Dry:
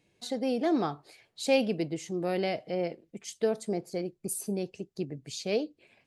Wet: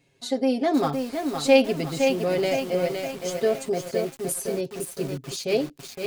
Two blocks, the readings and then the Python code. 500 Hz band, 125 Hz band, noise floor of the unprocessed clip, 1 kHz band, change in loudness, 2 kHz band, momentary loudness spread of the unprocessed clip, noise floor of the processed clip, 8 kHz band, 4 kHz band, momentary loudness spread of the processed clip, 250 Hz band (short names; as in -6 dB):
+7.5 dB, +5.5 dB, -74 dBFS, +7.0 dB, +6.5 dB, +8.0 dB, 11 LU, -51 dBFS, +6.5 dB, +7.0 dB, 11 LU, +5.5 dB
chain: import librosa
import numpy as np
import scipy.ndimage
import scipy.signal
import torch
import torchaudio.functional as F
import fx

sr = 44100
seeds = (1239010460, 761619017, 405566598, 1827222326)

y = x + 0.76 * np.pad(x, (int(7.4 * sr / 1000.0), 0))[:len(x)]
y = fx.echo_crushed(y, sr, ms=514, feedback_pct=55, bits=7, wet_db=-5.0)
y = F.gain(torch.from_numpy(y), 3.5).numpy()